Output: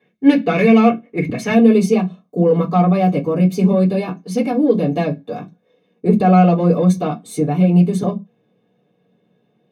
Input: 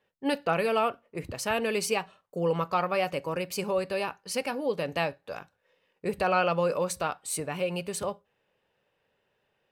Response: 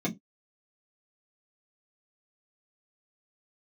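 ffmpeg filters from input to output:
-filter_complex "[0:a]asetnsamples=n=441:p=0,asendcmd='1.54 equalizer g -5',equalizer=f=2.1k:w=1.4:g=10,asoftclip=type=tanh:threshold=-17dB[a];[1:a]atrim=start_sample=2205[b];[a][b]afir=irnorm=-1:irlink=0,volume=1.5dB"

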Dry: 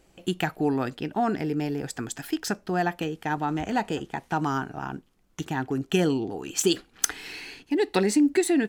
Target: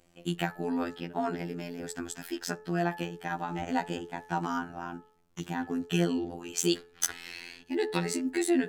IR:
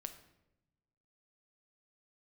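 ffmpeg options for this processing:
-af "afftfilt=real='hypot(re,im)*cos(PI*b)':imag='0':win_size=2048:overlap=0.75,bandreject=f=215.6:t=h:w=4,bandreject=f=431.2:t=h:w=4,bandreject=f=646.8:t=h:w=4,bandreject=f=862.4:t=h:w=4,bandreject=f=1.078k:t=h:w=4,bandreject=f=1.2936k:t=h:w=4,bandreject=f=1.5092k:t=h:w=4,bandreject=f=1.7248k:t=h:w=4,bandreject=f=1.9404k:t=h:w=4,volume=-1dB"

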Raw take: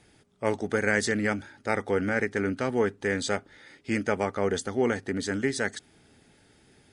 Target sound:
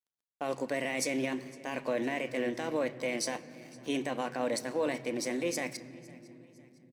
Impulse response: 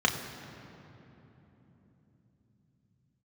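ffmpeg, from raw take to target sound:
-filter_complex "[0:a]highpass=150,lowpass=5.7k,asetrate=55563,aresample=44100,atempo=0.793701,alimiter=limit=-19.5dB:level=0:latency=1:release=11,highshelf=f=3.6k:g=10.5,bandreject=f=322.5:t=h:w=4,bandreject=f=645:t=h:w=4,bandreject=f=967.5:t=h:w=4,bandreject=f=1.29k:t=h:w=4,bandreject=f=1.6125k:t=h:w=4,bandreject=f=1.935k:t=h:w=4,bandreject=f=2.2575k:t=h:w=4,bandreject=f=2.58k:t=h:w=4,bandreject=f=2.9025k:t=h:w=4,bandreject=f=3.225k:t=h:w=4,bandreject=f=3.5475k:t=h:w=4,bandreject=f=3.87k:t=h:w=4,bandreject=f=4.1925k:t=h:w=4,bandreject=f=4.515k:t=h:w=4,bandreject=f=4.8375k:t=h:w=4,bandreject=f=5.16k:t=h:w=4,bandreject=f=5.4825k:t=h:w=4,bandreject=f=5.805k:t=h:w=4,bandreject=f=6.1275k:t=h:w=4,bandreject=f=6.45k:t=h:w=4,bandreject=f=6.7725k:t=h:w=4,bandreject=f=7.095k:t=h:w=4,bandreject=f=7.4175k:t=h:w=4,bandreject=f=7.74k:t=h:w=4,bandreject=f=8.0625k:t=h:w=4,bandreject=f=8.385k:t=h:w=4,bandreject=f=8.7075k:t=h:w=4,bandreject=f=9.03k:t=h:w=4,bandreject=f=9.3525k:t=h:w=4,bandreject=f=9.675k:t=h:w=4,bandreject=f=9.9975k:t=h:w=4,bandreject=f=10.32k:t=h:w=4,bandreject=f=10.6425k:t=h:w=4,bandreject=f=10.965k:t=h:w=4,bandreject=f=11.2875k:t=h:w=4,bandreject=f=11.61k:t=h:w=4,bandreject=f=11.9325k:t=h:w=4,aeval=exprs='sgn(val(0))*max(abs(val(0))-0.00316,0)':c=same,equalizer=f=200:w=3:g=4,aecho=1:1:508|1016|1524:0.0708|0.0319|0.0143,asplit=2[a][b];[1:a]atrim=start_sample=2205,lowshelf=f=220:g=7.5[c];[b][c]afir=irnorm=-1:irlink=0,volume=-21dB[d];[a][d]amix=inputs=2:normalize=0,volume=-5dB"

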